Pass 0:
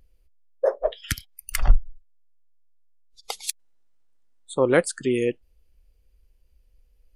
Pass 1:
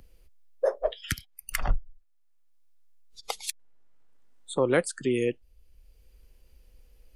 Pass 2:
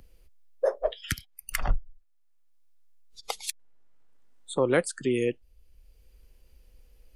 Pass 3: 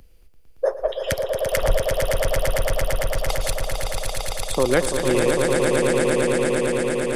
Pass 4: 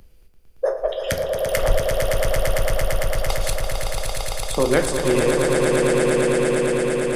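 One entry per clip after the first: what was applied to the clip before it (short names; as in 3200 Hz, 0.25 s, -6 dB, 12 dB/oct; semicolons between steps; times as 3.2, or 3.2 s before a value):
three-band squash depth 40%; gain -3 dB
nothing audible
swelling echo 0.113 s, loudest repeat 8, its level -5 dB; gain +4 dB
reverb RT60 0.50 s, pre-delay 11 ms, DRR 7 dB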